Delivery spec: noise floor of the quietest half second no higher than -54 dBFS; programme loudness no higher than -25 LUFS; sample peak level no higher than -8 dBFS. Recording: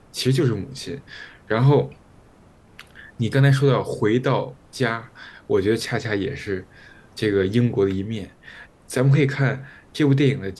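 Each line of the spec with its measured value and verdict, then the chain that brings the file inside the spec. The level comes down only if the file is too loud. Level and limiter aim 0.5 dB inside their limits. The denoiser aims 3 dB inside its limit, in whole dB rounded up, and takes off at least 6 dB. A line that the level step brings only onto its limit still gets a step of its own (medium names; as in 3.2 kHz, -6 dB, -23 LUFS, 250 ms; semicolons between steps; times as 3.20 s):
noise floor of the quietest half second -51 dBFS: fail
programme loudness -21.5 LUFS: fail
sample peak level -5.0 dBFS: fail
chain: trim -4 dB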